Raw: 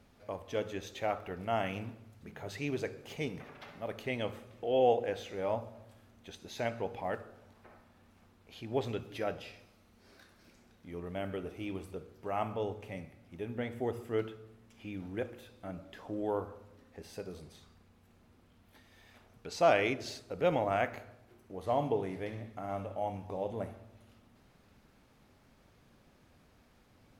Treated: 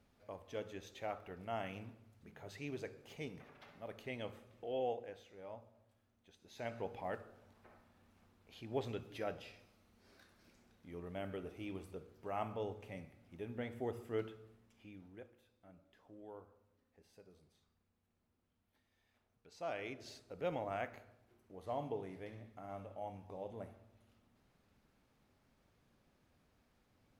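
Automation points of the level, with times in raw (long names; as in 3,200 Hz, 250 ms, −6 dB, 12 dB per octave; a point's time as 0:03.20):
0:04.64 −9 dB
0:05.25 −17 dB
0:06.36 −17 dB
0:06.77 −6 dB
0:14.46 −6 dB
0:15.32 −19 dB
0:19.53 −19 dB
0:20.16 −10 dB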